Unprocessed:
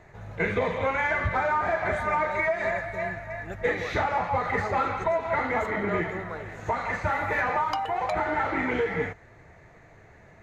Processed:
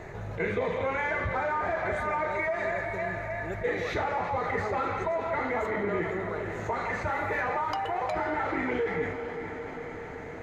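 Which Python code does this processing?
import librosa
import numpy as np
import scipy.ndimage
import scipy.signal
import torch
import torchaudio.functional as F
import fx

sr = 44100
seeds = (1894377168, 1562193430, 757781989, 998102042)

y = fx.peak_eq(x, sr, hz=400.0, db=5.5, octaves=0.82)
y = fx.echo_diffused(y, sr, ms=466, feedback_pct=55, wet_db=-15.0)
y = fx.env_flatten(y, sr, amount_pct=50)
y = y * 10.0 ** (-7.5 / 20.0)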